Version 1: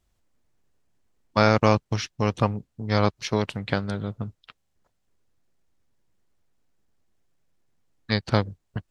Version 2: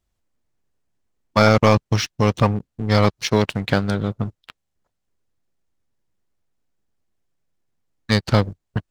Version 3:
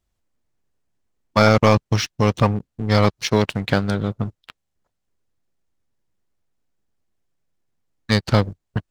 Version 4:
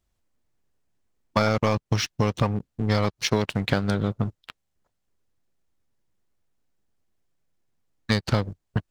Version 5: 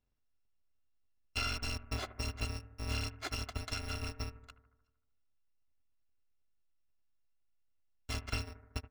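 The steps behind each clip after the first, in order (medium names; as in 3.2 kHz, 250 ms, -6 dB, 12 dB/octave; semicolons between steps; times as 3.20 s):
waveshaping leveller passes 2
no audible change
compression 6:1, threshold -18 dBFS, peak gain reduction 9 dB
bit-reversed sample order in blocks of 256 samples; distance through air 150 m; bucket-brigade echo 76 ms, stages 1024, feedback 63%, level -15 dB; trim -6 dB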